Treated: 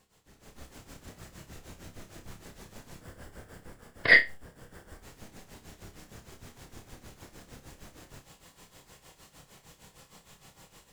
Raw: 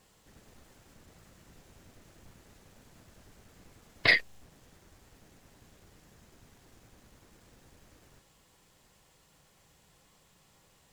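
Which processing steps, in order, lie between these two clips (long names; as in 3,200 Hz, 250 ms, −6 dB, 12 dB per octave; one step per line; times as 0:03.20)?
0:03.01–0:05.03: thirty-one-band graphic EQ 500 Hz +5 dB, 1,600 Hz +6 dB, 2,500 Hz −6 dB, 4,000 Hz −8 dB, 6,300 Hz −8 dB, 12,500 Hz −4 dB
automatic gain control gain up to 13 dB
amplitude tremolo 6.5 Hz, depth 83%
flutter between parallel walls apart 5 metres, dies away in 0.23 s
level −1.5 dB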